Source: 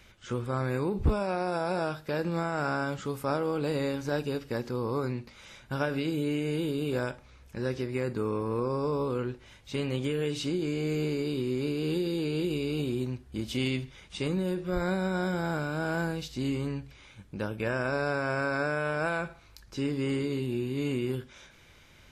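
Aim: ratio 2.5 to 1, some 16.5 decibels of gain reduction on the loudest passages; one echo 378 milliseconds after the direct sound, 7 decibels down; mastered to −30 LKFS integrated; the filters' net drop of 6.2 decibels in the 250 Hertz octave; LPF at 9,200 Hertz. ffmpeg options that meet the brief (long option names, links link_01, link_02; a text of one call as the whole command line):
ffmpeg -i in.wav -af "lowpass=9200,equalizer=frequency=250:width_type=o:gain=-9,acompressor=threshold=-47dB:ratio=2.5,aecho=1:1:378:0.447,volume=14.5dB" out.wav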